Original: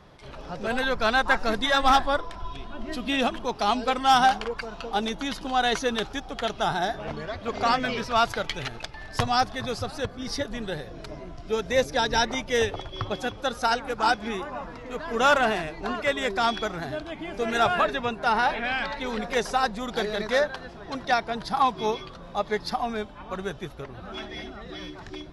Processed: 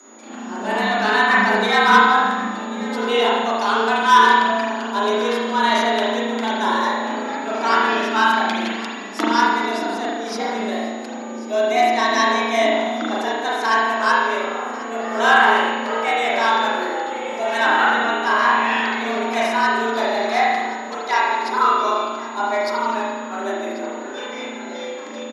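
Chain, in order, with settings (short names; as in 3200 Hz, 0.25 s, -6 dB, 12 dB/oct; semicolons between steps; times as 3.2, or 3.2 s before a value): spring tank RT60 1.3 s, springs 36 ms, chirp 50 ms, DRR -6 dB; whine 6600 Hz -47 dBFS; frequency shift +200 Hz; echo 1.088 s -17.5 dB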